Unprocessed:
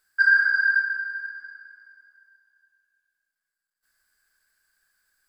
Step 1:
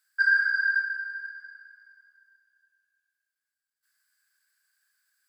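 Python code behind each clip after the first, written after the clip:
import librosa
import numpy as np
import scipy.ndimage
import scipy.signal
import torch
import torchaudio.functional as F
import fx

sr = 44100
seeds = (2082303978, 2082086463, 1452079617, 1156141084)

y = scipy.signal.sosfilt(scipy.signal.butter(2, 1400.0, 'highpass', fs=sr, output='sos'), x)
y = F.gain(torch.from_numpy(y), -2.0).numpy()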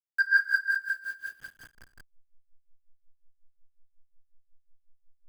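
y = fx.delta_hold(x, sr, step_db=-45.5)
y = y * 10.0 ** (-21 * (0.5 - 0.5 * np.cos(2.0 * np.pi * 5.5 * np.arange(len(y)) / sr)) / 20.0)
y = F.gain(torch.from_numpy(y), 3.5).numpy()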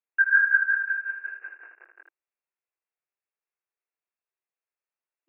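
y = fx.brickwall_bandpass(x, sr, low_hz=320.0, high_hz=2800.0)
y = fx.room_early_taps(y, sr, ms=(21, 79), db=(-5.0, -5.0))
y = F.gain(torch.from_numpy(y), 3.5).numpy()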